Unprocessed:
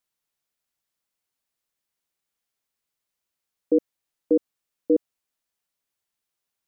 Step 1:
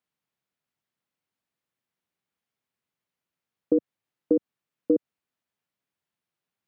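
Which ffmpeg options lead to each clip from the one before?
-af "highpass=130,acompressor=threshold=0.112:ratio=6,bass=f=250:g=9,treble=f=4000:g=-10"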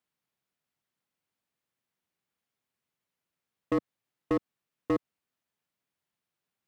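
-af "volume=13.3,asoftclip=hard,volume=0.075"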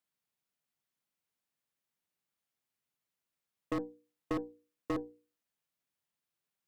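-af "highshelf=f=4300:g=5,bandreject=f=60:t=h:w=6,bandreject=f=120:t=h:w=6,bandreject=f=180:t=h:w=6,bandreject=f=240:t=h:w=6,bandreject=f=300:t=h:w=6,bandreject=f=360:t=h:w=6,bandreject=f=420:t=h:w=6,bandreject=f=480:t=h:w=6,aeval=exprs='0.106*(cos(1*acos(clip(val(0)/0.106,-1,1)))-cos(1*PI/2))+0.00596*(cos(6*acos(clip(val(0)/0.106,-1,1)))-cos(6*PI/2))':c=same,volume=0.562"

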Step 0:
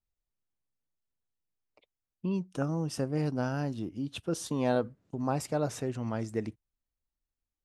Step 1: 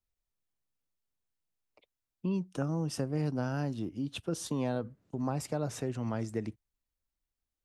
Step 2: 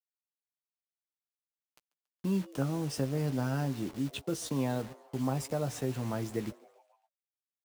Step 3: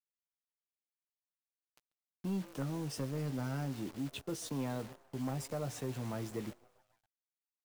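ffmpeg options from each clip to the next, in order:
-filter_complex "[0:a]acrossover=split=200[s0][s1];[s1]acompressor=threshold=0.0282:ratio=6[s2];[s0][s2]amix=inputs=2:normalize=0"
-filter_complex "[0:a]acrusher=bits=7:mix=0:aa=0.000001,asplit=2[s0][s1];[s1]adelay=15,volume=0.355[s2];[s0][s2]amix=inputs=2:normalize=0,asplit=5[s3][s4][s5][s6][s7];[s4]adelay=140,afreqshift=140,volume=0.0708[s8];[s5]adelay=280,afreqshift=280,volume=0.0398[s9];[s6]adelay=420,afreqshift=420,volume=0.0221[s10];[s7]adelay=560,afreqshift=560,volume=0.0124[s11];[s3][s8][s9][s10][s11]amix=inputs=5:normalize=0"
-af "acrusher=bits=9:dc=4:mix=0:aa=0.000001,asoftclip=type=tanh:threshold=0.0562,volume=0.631"

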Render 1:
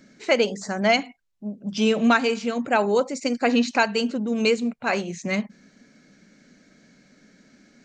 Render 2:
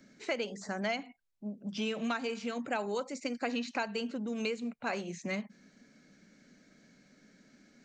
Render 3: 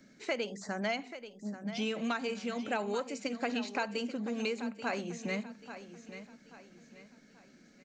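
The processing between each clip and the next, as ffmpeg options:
-filter_complex "[0:a]acrossover=split=140|1100|3300[s0][s1][s2][s3];[s0]acompressor=threshold=0.00282:ratio=4[s4];[s1]acompressor=threshold=0.0398:ratio=4[s5];[s2]acompressor=threshold=0.0251:ratio=4[s6];[s3]acompressor=threshold=0.00794:ratio=4[s7];[s4][s5][s6][s7]amix=inputs=4:normalize=0,volume=0.473"
-af "aecho=1:1:835|1670|2505|3340:0.251|0.0955|0.0363|0.0138"

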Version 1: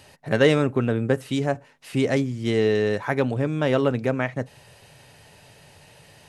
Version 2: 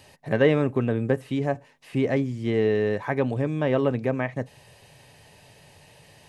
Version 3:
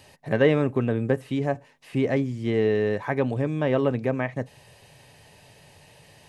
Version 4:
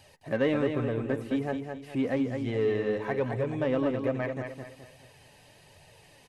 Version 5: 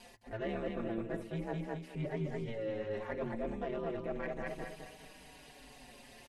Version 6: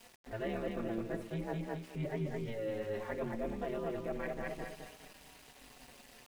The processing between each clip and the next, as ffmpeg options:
-filter_complex "[0:a]bandreject=f=1400:w=6.7,acrossover=split=2800[s0][s1];[s1]acompressor=threshold=0.00282:ratio=4:attack=1:release=60[s2];[s0][s2]amix=inputs=2:normalize=0,volume=0.841"
-af anull
-filter_complex "[0:a]flanger=delay=1.2:depth=2.9:regen=38:speed=1.2:shape=triangular,asplit=2[s0][s1];[s1]asoftclip=type=tanh:threshold=0.0335,volume=0.398[s2];[s0][s2]amix=inputs=2:normalize=0,aecho=1:1:212|424|636|848:0.501|0.185|0.0686|0.0254,volume=0.668"
-filter_complex "[0:a]areverse,acompressor=threshold=0.0141:ratio=5,areverse,aeval=exprs='val(0)*sin(2*PI*110*n/s)':c=same,asplit=2[s0][s1];[s1]adelay=5.2,afreqshift=-0.32[s2];[s0][s2]amix=inputs=2:normalize=1,volume=2.24"
-af "aeval=exprs='val(0)*gte(abs(val(0)),0.00224)':c=same"

